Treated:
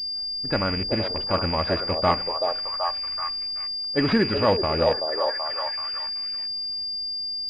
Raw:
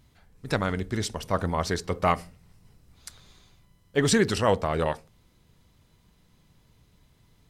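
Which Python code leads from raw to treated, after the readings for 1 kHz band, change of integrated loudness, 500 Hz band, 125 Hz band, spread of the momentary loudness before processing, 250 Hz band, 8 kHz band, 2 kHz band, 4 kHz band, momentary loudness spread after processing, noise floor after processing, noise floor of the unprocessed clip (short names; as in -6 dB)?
+3.5 dB, +2.5 dB, +3.5 dB, -0.5 dB, 9 LU, +2.5 dB, under -20 dB, +1.5 dB, +14.5 dB, 6 LU, -30 dBFS, -63 dBFS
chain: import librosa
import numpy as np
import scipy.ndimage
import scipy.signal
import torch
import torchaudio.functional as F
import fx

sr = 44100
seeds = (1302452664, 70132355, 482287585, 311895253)

p1 = fx.rattle_buzz(x, sr, strikes_db=-32.0, level_db=-23.0)
p2 = p1 + 0.35 * np.pad(p1, (int(3.5 * sr / 1000.0), 0))[:len(p1)]
p3 = p2 + fx.echo_stepped(p2, sr, ms=381, hz=550.0, octaves=0.7, feedback_pct=70, wet_db=-1.0, dry=0)
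p4 = fx.env_lowpass(p3, sr, base_hz=1400.0, full_db=-23.5)
p5 = fx.pwm(p4, sr, carrier_hz=4800.0)
y = p5 * librosa.db_to_amplitude(1.5)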